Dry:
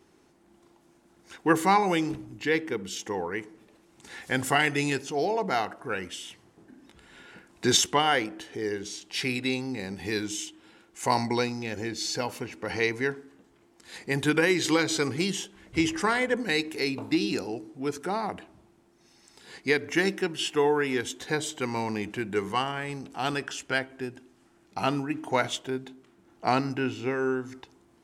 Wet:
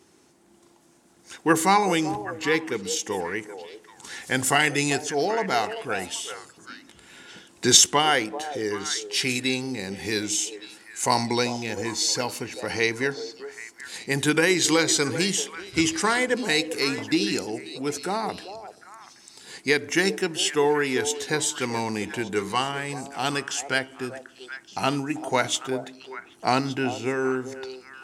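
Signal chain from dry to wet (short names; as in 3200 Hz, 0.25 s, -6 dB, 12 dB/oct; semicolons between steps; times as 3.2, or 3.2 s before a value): HPF 71 Hz; bell 8000 Hz +8.5 dB 1.7 oct; delay with a stepping band-pass 0.389 s, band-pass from 560 Hz, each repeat 1.4 oct, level -8 dB; gain +2 dB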